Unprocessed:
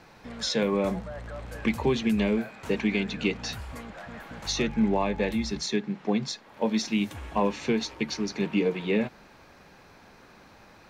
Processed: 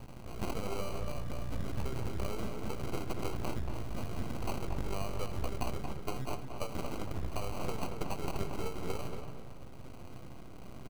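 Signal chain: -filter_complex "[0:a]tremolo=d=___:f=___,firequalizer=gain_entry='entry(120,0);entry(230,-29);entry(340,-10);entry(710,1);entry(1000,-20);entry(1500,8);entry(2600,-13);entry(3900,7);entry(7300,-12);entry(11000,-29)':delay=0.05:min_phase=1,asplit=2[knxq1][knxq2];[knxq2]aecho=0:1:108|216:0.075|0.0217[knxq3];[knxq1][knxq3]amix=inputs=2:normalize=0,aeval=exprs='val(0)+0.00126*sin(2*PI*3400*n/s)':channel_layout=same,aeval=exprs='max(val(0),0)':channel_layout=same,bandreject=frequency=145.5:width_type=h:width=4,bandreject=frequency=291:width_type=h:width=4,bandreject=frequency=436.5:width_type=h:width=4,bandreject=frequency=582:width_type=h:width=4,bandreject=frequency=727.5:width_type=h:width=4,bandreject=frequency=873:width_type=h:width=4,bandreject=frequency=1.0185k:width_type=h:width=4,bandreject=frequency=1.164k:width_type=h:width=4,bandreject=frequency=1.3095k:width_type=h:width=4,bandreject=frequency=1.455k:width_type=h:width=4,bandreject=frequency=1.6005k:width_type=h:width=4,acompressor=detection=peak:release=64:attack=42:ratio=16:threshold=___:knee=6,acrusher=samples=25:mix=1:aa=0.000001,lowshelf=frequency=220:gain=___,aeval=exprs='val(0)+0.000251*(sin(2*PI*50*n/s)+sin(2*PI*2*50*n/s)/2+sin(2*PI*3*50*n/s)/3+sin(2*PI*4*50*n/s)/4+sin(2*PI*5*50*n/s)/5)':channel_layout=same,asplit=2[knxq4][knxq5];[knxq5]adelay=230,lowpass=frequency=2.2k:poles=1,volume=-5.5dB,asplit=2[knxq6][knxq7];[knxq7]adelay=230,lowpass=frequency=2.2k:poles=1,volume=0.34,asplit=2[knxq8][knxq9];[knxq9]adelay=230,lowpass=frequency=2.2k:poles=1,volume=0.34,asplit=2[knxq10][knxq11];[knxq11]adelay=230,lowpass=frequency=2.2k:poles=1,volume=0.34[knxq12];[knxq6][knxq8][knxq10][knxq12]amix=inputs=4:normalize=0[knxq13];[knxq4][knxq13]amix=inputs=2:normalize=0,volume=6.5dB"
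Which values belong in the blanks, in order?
0.32, 1.2, -48dB, 5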